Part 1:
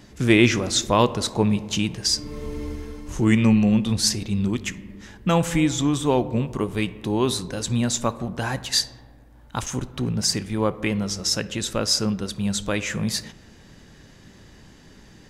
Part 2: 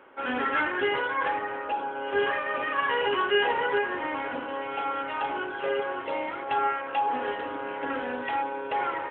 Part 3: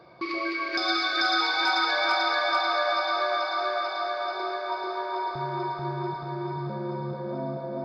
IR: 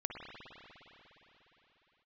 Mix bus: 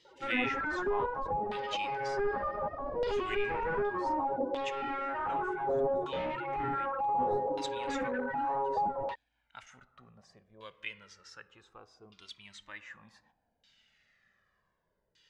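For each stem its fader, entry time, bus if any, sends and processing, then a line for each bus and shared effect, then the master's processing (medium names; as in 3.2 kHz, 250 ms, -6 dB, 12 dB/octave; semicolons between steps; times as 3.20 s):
-2.5 dB, 0.00 s, no send, pre-emphasis filter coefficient 0.97; Shepard-style flanger falling 0.24 Hz
+0.5 dB, 0.05 s, no send, loudest bins only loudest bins 8; slew-rate limiter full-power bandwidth 14 Hz
-11.5 dB, 0.00 s, no send, elliptic band-stop 500–4900 Hz; random-step tremolo, depth 90%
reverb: none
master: LFO low-pass saw down 0.66 Hz 580–3700 Hz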